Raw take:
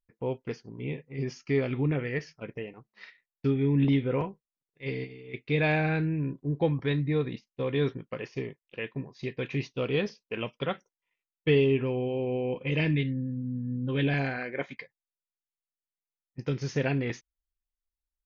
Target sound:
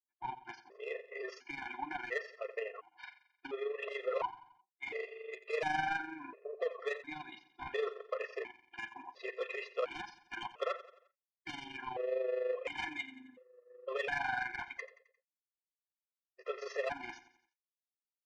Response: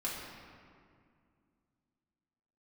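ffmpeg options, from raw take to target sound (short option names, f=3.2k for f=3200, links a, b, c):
-filter_complex "[0:a]highpass=f=510:w=0.5412,highpass=f=510:w=1.3066,agate=range=-33dB:threshold=-53dB:ratio=3:detection=peak,equalizer=f=960:t=o:w=2.3:g=11.5,asplit=2[a][b];[b]acompressor=threshold=-36dB:ratio=6,volume=-0.5dB[c];[a][c]amix=inputs=2:normalize=0,asoftclip=type=tanh:threshold=-23.5dB,tremolo=f=24:d=0.621,adynamicsmooth=sensitivity=0.5:basefreq=4.4k,asplit=2[d][e];[e]aecho=0:1:88|176|264|352:0.168|0.0789|0.0371|0.0174[f];[d][f]amix=inputs=2:normalize=0,afftfilt=real='re*gt(sin(2*PI*0.71*pts/sr)*(1-2*mod(floor(b*sr/1024/350),2)),0)':imag='im*gt(sin(2*PI*0.71*pts/sr)*(1-2*mod(floor(b*sr/1024/350),2)),0)':win_size=1024:overlap=0.75,volume=-2dB"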